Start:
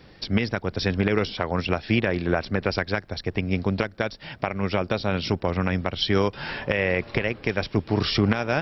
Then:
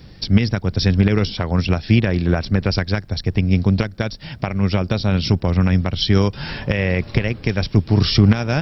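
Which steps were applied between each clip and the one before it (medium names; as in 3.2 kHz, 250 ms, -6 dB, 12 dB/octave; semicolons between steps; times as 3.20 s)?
tone controls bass +12 dB, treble +11 dB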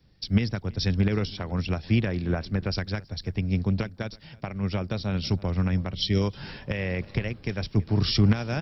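echo from a far wall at 56 m, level -20 dB; time-frequency box 5.94–6.22 s, 670–1800 Hz -10 dB; three bands expanded up and down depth 40%; trim -9 dB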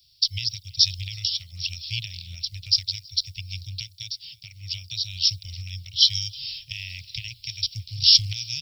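inverse Chebyshev band-stop 210–1700 Hz, stop band 40 dB; tilt EQ +4 dB/octave; trim +5.5 dB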